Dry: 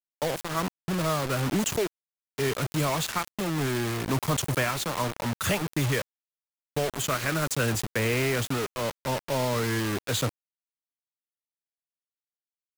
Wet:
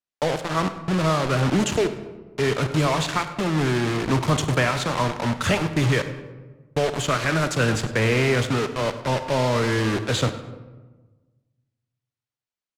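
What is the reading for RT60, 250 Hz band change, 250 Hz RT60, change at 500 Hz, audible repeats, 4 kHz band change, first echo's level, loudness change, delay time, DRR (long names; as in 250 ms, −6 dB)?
1.3 s, +6.0 dB, 1.5 s, +6.0 dB, 2, +4.0 dB, −17.0 dB, +5.0 dB, 100 ms, 9.0 dB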